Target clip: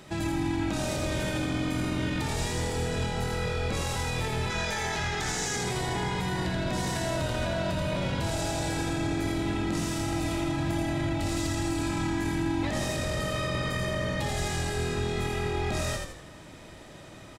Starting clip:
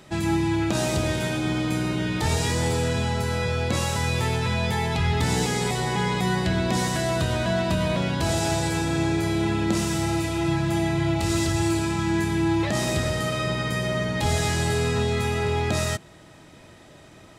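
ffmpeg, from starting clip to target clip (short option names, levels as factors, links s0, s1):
-filter_complex "[0:a]asettb=1/sr,asplit=3[s0][s1][s2];[s0]atrim=end=4.504[s3];[s1]atrim=start=4.5:end=5.56,asetpts=PTS-STARTPTS,afade=t=in:d=0.004:c=qsin,afade=t=out:st=1.056:d=0.004:c=qsin,equalizer=f=100:t=o:w=0.67:g=-11,equalizer=f=250:t=o:w=0.67:g=-4,equalizer=f=1600:t=o:w=0.67:g=7,equalizer=f=6300:t=o:w=0.67:g=11[s4];[s2]atrim=start=5.556[s5];[s3][s4]acrossfade=d=0.004:c1=hsin:c2=qsin[s6];[s6][s5]acrossfade=d=0.004:c1=qsin:c2=hsin,alimiter=limit=0.0668:level=0:latency=1:release=34,asplit=6[s7][s8][s9][s10][s11][s12];[s8]adelay=82,afreqshift=-45,volume=0.631[s13];[s9]adelay=164,afreqshift=-90,volume=0.26[s14];[s10]adelay=246,afreqshift=-135,volume=0.106[s15];[s11]adelay=328,afreqshift=-180,volume=0.0437[s16];[s12]adelay=410,afreqshift=-225,volume=0.0178[s17];[s7][s13][s14][s15][s16][s17]amix=inputs=6:normalize=0"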